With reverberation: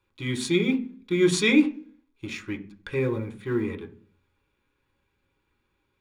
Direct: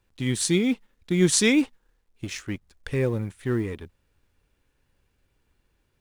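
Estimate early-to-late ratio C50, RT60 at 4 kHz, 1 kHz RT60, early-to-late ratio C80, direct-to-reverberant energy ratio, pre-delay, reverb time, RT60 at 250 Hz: 15.0 dB, 0.45 s, 0.35 s, 19.5 dB, 3.0 dB, 3 ms, 0.45 s, 0.70 s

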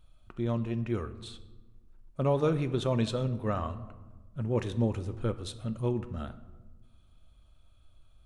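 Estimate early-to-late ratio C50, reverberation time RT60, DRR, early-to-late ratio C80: 14.5 dB, 1.3 s, 10.0 dB, 16.5 dB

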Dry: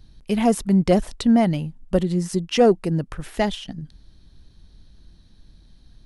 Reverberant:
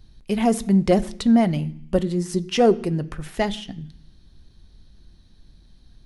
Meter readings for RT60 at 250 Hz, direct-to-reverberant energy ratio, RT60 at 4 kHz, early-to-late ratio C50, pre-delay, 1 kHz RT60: 0.85 s, 11.0 dB, 0.85 s, 19.0 dB, 3 ms, 0.70 s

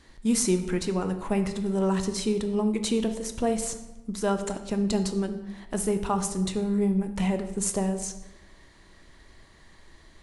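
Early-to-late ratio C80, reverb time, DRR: 12.0 dB, 1.1 s, 7.0 dB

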